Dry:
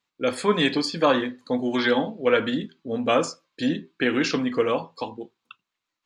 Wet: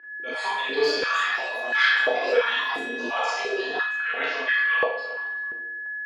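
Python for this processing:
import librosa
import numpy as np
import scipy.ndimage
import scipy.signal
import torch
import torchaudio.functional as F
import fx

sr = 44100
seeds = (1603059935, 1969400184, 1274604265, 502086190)

y = fx.octave_divider(x, sr, octaves=1, level_db=1.0)
y = fx.tilt_eq(y, sr, slope=4.0)
y = y + 0.51 * np.pad(y, (int(4.4 * sr / 1000.0), 0))[:len(y)]
y = fx.auto_swell(y, sr, attack_ms=210.0)
y = np.sign(y) * np.maximum(np.abs(y) - 10.0 ** (-53.0 / 20.0), 0.0)
y = fx.echo_filtered(y, sr, ms=368, feedback_pct=25, hz=2800.0, wet_db=-17.5)
y = fx.chorus_voices(y, sr, voices=6, hz=0.6, base_ms=13, depth_ms=1.9, mix_pct=45)
y = y + 10.0 ** (-44.0 / 20.0) * np.sin(2.0 * np.pi * 1700.0 * np.arange(len(y)) / sr)
y = fx.rev_schroeder(y, sr, rt60_s=0.75, comb_ms=26, drr_db=-6.0)
y = fx.echo_pitch(y, sr, ms=586, semitones=7, count=3, db_per_echo=-6.0)
y = fx.air_absorb(y, sr, metres=240.0)
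y = fx.filter_held_highpass(y, sr, hz=2.9, low_hz=340.0, high_hz=1600.0)
y = y * 10.0 ** (-1.5 / 20.0)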